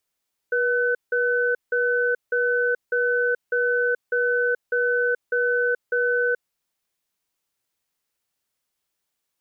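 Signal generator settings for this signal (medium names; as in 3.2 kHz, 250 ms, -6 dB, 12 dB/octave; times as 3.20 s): cadence 484 Hz, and 1.51 kHz, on 0.43 s, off 0.17 s, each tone -21.5 dBFS 5.92 s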